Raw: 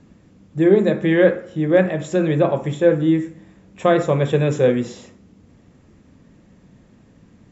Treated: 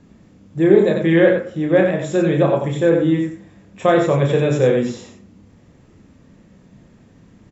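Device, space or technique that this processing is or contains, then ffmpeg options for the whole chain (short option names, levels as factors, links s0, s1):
slapback doubling: -filter_complex "[0:a]asplit=3[s0][s1][s2];[s1]adelay=30,volume=0.562[s3];[s2]adelay=91,volume=0.562[s4];[s0][s3][s4]amix=inputs=3:normalize=0"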